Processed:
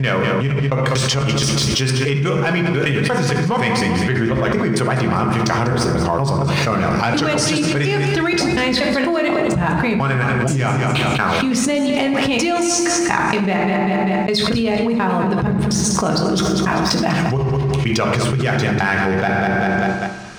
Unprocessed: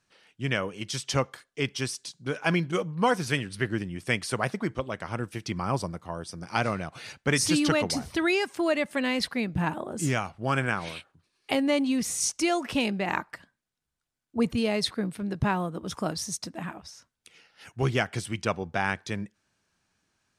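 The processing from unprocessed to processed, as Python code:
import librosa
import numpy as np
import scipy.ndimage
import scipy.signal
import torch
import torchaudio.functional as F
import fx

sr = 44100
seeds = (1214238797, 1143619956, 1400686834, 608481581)

p1 = fx.block_reorder(x, sr, ms=238.0, group=3)
p2 = scipy.signal.sosfilt(scipy.signal.butter(2, 8300.0, 'lowpass', fs=sr, output='sos'), p1)
p3 = fx.high_shelf(p2, sr, hz=6000.0, db=-5.0)
p4 = fx.hum_notches(p3, sr, base_hz=50, count=8)
p5 = fx.leveller(p4, sr, passes=1)
p6 = p5 + fx.echo_feedback(p5, sr, ms=197, feedback_pct=38, wet_db=-12, dry=0)
p7 = fx.rev_fdn(p6, sr, rt60_s=0.98, lf_ratio=1.2, hf_ratio=0.6, size_ms=43.0, drr_db=3.5)
p8 = fx.env_flatten(p7, sr, amount_pct=100)
y = p8 * librosa.db_to_amplitude(-2.0)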